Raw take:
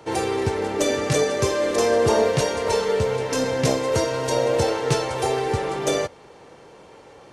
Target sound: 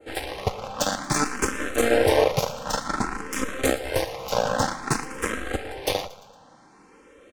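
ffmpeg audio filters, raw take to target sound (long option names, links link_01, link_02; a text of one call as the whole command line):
ffmpeg -i in.wav -filter_complex "[0:a]aeval=exprs='0.473*(cos(1*acos(clip(val(0)/0.473,-1,1)))-cos(1*PI/2))+0.106*(cos(7*acos(clip(val(0)/0.473,-1,1)))-cos(7*PI/2))+0.0106*(cos(8*acos(clip(val(0)/0.473,-1,1)))-cos(8*PI/2))':channel_layout=same,asplit=2[link_01][link_02];[link_02]aecho=0:1:115|230|345|460:0.133|0.06|0.027|0.0122[link_03];[link_01][link_03]amix=inputs=2:normalize=0,adynamicequalizer=threshold=0.00891:dfrequency=3700:dqfactor=0.85:tfrequency=3700:tqfactor=0.85:attack=5:release=100:ratio=0.375:range=2.5:mode=cutabove:tftype=bell,aecho=1:1:3.8:0.36,asplit=2[link_04][link_05];[link_05]afreqshift=0.54[link_06];[link_04][link_06]amix=inputs=2:normalize=1,volume=2.5dB" out.wav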